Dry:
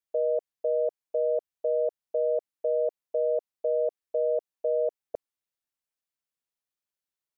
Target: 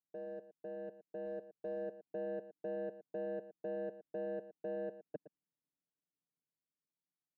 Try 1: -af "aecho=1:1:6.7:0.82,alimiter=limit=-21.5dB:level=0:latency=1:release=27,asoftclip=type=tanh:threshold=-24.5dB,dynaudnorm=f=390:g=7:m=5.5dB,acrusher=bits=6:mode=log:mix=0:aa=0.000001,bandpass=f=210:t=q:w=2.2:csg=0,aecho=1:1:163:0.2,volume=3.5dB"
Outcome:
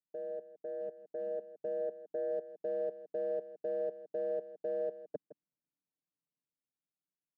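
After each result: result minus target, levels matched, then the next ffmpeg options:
echo 49 ms late; soft clip: distortion -8 dB
-af "aecho=1:1:6.7:0.82,alimiter=limit=-21.5dB:level=0:latency=1:release=27,asoftclip=type=tanh:threshold=-24.5dB,dynaudnorm=f=390:g=7:m=5.5dB,acrusher=bits=6:mode=log:mix=0:aa=0.000001,bandpass=f=210:t=q:w=2.2:csg=0,aecho=1:1:114:0.2,volume=3.5dB"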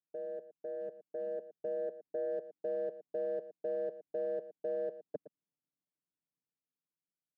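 soft clip: distortion -8 dB
-af "aecho=1:1:6.7:0.82,alimiter=limit=-21.5dB:level=0:latency=1:release=27,asoftclip=type=tanh:threshold=-32dB,dynaudnorm=f=390:g=7:m=5.5dB,acrusher=bits=6:mode=log:mix=0:aa=0.000001,bandpass=f=210:t=q:w=2.2:csg=0,aecho=1:1:114:0.2,volume=3.5dB"

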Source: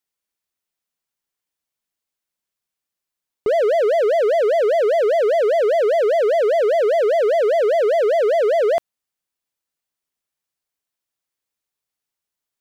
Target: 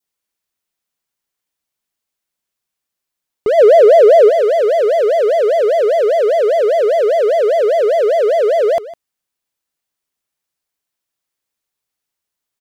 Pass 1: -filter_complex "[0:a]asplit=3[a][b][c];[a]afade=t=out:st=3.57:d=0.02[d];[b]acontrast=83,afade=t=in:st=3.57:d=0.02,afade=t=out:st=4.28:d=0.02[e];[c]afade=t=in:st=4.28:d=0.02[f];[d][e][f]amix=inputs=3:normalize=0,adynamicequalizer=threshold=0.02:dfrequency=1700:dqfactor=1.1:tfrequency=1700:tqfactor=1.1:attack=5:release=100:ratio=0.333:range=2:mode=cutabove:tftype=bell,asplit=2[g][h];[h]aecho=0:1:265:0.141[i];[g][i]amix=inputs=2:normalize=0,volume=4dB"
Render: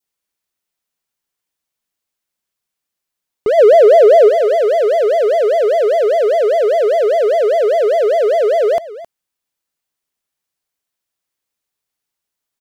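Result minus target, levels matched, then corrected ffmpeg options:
echo 0.109 s late
-filter_complex "[0:a]asplit=3[a][b][c];[a]afade=t=out:st=3.57:d=0.02[d];[b]acontrast=83,afade=t=in:st=3.57:d=0.02,afade=t=out:st=4.28:d=0.02[e];[c]afade=t=in:st=4.28:d=0.02[f];[d][e][f]amix=inputs=3:normalize=0,adynamicequalizer=threshold=0.02:dfrequency=1700:dqfactor=1.1:tfrequency=1700:tqfactor=1.1:attack=5:release=100:ratio=0.333:range=2:mode=cutabove:tftype=bell,asplit=2[g][h];[h]aecho=0:1:156:0.141[i];[g][i]amix=inputs=2:normalize=0,volume=4dB"

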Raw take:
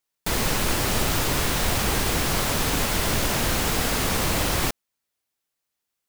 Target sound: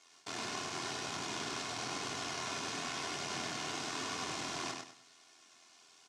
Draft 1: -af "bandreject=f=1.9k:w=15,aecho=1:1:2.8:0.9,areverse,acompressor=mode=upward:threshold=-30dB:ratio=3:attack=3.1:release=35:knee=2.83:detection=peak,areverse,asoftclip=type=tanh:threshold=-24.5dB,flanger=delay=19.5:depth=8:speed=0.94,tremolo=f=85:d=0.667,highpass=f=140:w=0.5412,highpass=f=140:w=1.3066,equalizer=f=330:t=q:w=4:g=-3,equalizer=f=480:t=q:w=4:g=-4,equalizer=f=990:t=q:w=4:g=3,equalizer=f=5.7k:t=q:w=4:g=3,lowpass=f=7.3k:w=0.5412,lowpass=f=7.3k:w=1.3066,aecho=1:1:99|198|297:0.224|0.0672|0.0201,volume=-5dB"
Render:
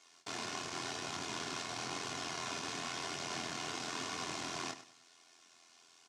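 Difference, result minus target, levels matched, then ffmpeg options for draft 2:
echo-to-direct -9 dB
-af "bandreject=f=1.9k:w=15,aecho=1:1:2.8:0.9,areverse,acompressor=mode=upward:threshold=-30dB:ratio=3:attack=3.1:release=35:knee=2.83:detection=peak,areverse,asoftclip=type=tanh:threshold=-24.5dB,flanger=delay=19.5:depth=8:speed=0.94,tremolo=f=85:d=0.667,highpass=f=140:w=0.5412,highpass=f=140:w=1.3066,equalizer=f=330:t=q:w=4:g=-3,equalizer=f=480:t=q:w=4:g=-4,equalizer=f=990:t=q:w=4:g=3,equalizer=f=5.7k:t=q:w=4:g=3,lowpass=f=7.3k:w=0.5412,lowpass=f=7.3k:w=1.3066,aecho=1:1:99|198|297|396:0.631|0.189|0.0568|0.017,volume=-5dB"

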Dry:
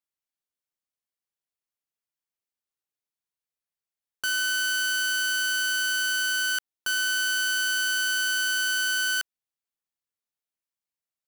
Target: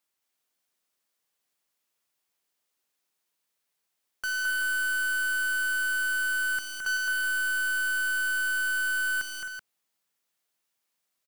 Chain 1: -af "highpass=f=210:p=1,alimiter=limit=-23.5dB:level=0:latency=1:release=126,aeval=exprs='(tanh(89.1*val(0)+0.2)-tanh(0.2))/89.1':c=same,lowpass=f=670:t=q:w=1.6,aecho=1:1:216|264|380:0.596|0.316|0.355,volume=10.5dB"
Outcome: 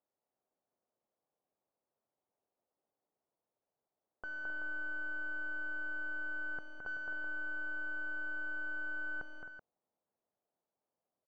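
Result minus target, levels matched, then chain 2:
500 Hz band +17.5 dB
-af "highpass=f=210:p=1,alimiter=limit=-23.5dB:level=0:latency=1:release=126,aeval=exprs='(tanh(89.1*val(0)+0.2)-tanh(0.2))/89.1':c=same,aecho=1:1:216|264|380:0.596|0.316|0.355,volume=10.5dB"

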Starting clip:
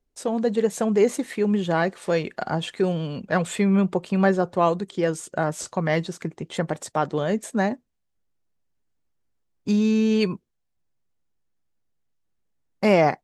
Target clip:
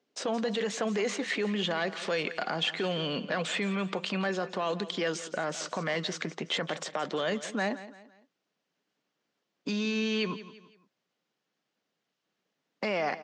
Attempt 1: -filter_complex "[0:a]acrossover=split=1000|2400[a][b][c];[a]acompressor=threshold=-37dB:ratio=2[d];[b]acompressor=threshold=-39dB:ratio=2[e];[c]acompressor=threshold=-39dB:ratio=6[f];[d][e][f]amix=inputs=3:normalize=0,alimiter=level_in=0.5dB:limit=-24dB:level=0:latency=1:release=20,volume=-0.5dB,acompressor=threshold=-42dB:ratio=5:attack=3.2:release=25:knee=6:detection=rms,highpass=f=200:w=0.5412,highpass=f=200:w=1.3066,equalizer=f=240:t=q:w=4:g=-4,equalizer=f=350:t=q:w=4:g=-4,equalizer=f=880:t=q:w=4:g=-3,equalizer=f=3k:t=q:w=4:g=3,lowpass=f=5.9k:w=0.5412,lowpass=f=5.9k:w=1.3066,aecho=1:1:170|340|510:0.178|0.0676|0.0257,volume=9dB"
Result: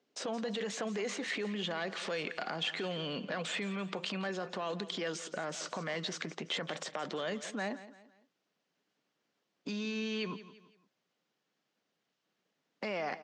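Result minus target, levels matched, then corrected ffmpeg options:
compressor: peak gain reduction +7 dB
-filter_complex "[0:a]acrossover=split=1000|2400[a][b][c];[a]acompressor=threshold=-37dB:ratio=2[d];[b]acompressor=threshold=-39dB:ratio=2[e];[c]acompressor=threshold=-39dB:ratio=6[f];[d][e][f]amix=inputs=3:normalize=0,alimiter=level_in=0.5dB:limit=-24dB:level=0:latency=1:release=20,volume=-0.5dB,acompressor=threshold=-33.5dB:ratio=5:attack=3.2:release=25:knee=6:detection=rms,highpass=f=200:w=0.5412,highpass=f=200:w=1.3066,equalizer=f=240:t=q:w=4:g=-4,equalizer=f=350:t=q:w=4:g=-4,equalizer=f=880:t=q:w=4:g=-3,equalizer=f=3k:t=q:w=4:g=3,lowpass=f=5.9k:w=0.5412,lowpass=f=5.9k:w=1.3066,aecho=1:1:170|340|510:0.178|0.0676|0.0257,volume=9dB"

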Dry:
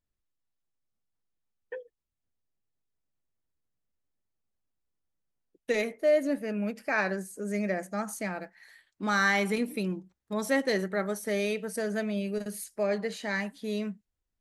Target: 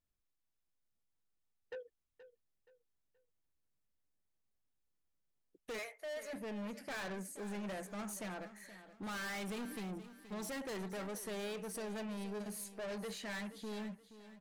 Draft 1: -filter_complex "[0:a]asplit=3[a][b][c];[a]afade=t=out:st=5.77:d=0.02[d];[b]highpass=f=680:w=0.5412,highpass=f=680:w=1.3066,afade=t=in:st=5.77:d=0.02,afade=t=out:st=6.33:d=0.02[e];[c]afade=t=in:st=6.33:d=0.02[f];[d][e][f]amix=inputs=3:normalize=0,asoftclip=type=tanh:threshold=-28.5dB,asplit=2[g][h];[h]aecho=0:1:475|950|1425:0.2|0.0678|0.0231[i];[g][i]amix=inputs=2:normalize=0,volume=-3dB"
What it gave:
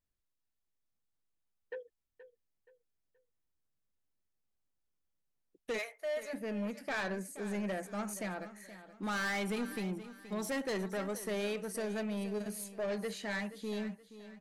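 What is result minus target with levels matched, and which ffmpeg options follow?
soft clip: distortion -5 dB
-filter_complex "[0:a]asplit=3[a][b][c];[a]afade=t=out:st=5.77:d=0.02[d];[b]highpass=f=680:w=0.5412,highpass=f=680:w=1.3066,afade=t=in:st=5.77:d=0.02,afade=t=out:st=6.33:d=0.02[e];[c]afade=t=in:st=6.33:d=0.02[f];[d][e][f]amix=inputs=3:normalize=0,asoftclip=type=tanh:threshold=-37.5dB,asplit=2[g][h];[h]aecho=0:1:475|950|1425:0.2|0.0678|0.0231[i];[g][i]amix=inputs=2:normalize=0,volume=-3dB"

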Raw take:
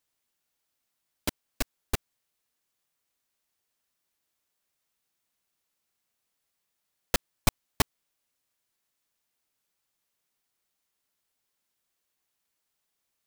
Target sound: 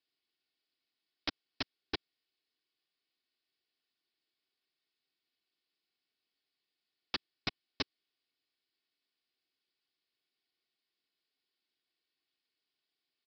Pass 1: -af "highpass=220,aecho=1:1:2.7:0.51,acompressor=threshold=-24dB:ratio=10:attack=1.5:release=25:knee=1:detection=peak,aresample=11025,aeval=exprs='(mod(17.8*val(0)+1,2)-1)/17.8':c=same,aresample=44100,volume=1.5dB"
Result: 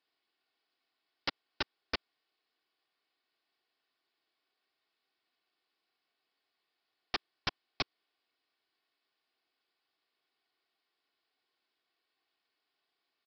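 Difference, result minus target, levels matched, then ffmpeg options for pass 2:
1000 Hz band +3.5 dB
-af "highpass=220,equalizer=f=910:t=o:w=2.2:g=-13.5,aecho=1:1:2.7:0.51,acompressor=threshold=-24dB:ratio=10:attack=1.5:release=25:knee=1:detection=peak,aresample=11025,aeval=exprs='(mod(17.8*val(0)+1,2)-1)/17.8':c=same,aresample=44100,volume=1.5dB"

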